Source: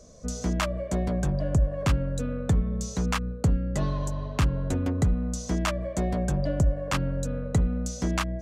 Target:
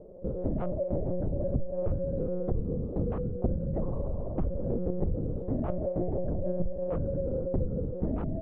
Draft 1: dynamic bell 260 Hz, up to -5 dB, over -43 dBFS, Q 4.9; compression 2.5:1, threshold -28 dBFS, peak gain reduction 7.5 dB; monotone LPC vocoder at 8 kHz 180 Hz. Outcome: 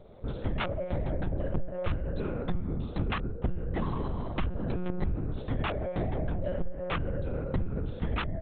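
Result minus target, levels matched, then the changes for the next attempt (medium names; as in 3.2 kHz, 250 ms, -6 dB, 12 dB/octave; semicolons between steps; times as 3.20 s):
500 Hz band -3.0 dB
add after dynamic bell: resonant low-pass 500 Hz, resonance Q 2.6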